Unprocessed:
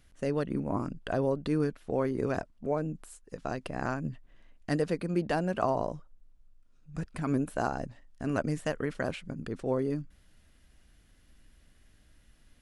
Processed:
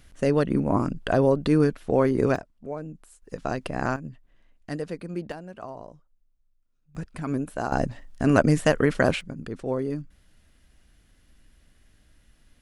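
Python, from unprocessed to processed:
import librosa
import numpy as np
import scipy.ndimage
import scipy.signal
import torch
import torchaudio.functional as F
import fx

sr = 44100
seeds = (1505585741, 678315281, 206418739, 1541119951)

y = fx.gain(x, sr, db=fx.steps((0.0, 8.5), (2.36, -3.5), (3.22, 6.0), (3.96, -3.0), (5.32, -10.5), (6.95, 1.0), (7.72, 11.5), (9.21, 2.0)))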